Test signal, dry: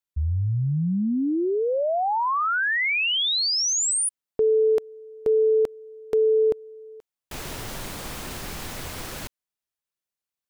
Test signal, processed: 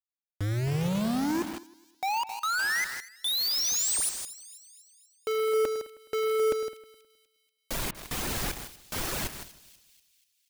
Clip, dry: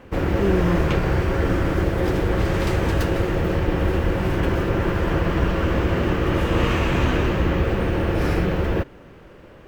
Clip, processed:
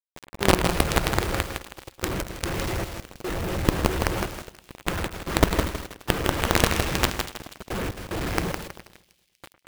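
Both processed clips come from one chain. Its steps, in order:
reverb reduction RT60 0.95 s
gate pattern "..xxxxx...x.xx" 74 BPM −24 dB
log-companded quantiser 2 bits
on a send: echo with a time of its own for lows and highs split 2,700 Hz, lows 105 ms, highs 242 ms, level −15.5 dB
on the sum: feedback echo at a low word length 160 ms, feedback 35%, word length 5 bits, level −6 dB
level −3 dB

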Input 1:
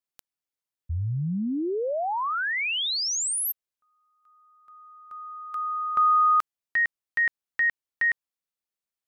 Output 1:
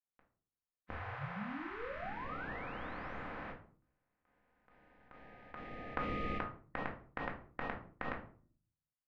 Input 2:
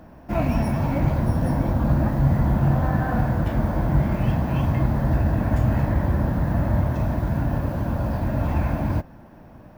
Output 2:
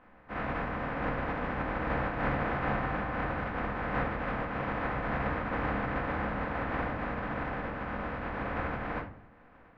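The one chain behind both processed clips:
compressing power law on the bin magnitudes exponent 0.13
low-pass filter 1,800 Hz 24 dB per octave
rectangular room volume 380 cubic metres, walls furnished, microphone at 2 metres
level −8.5 dB

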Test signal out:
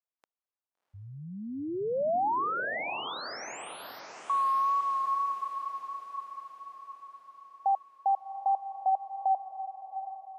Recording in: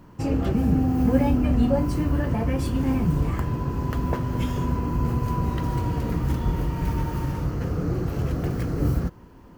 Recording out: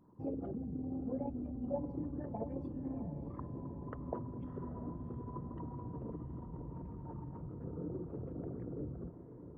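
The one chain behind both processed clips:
spectral envelope exaggerated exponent 2
brickwall limiter −18.5 dBFS
resonant band-pass 750 Hz, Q 1.1
tape wow and flutter 29 cents
on a send: feedback delay with all-pass diffusion 697 ms, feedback 51%, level −10 dB
on the sum: level −2.5 dB

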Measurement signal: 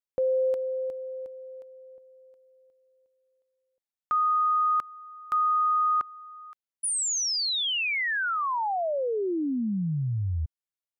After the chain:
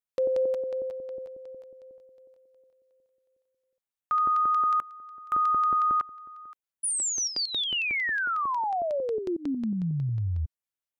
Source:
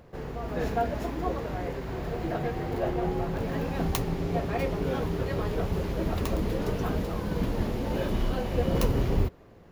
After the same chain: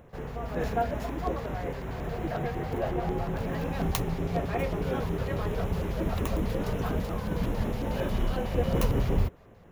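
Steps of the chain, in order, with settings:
auto-filter notch square 5.5 Hz 330–4,600 Hz

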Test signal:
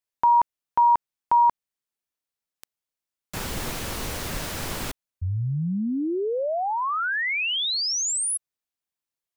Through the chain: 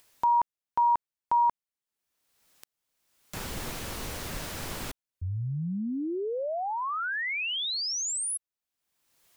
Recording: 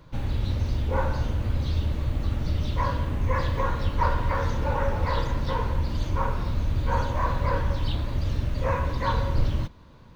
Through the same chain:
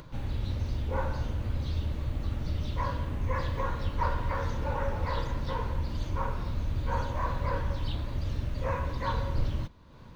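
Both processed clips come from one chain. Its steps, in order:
upward compression, threshold −34 dBFS
level −5.5 dB

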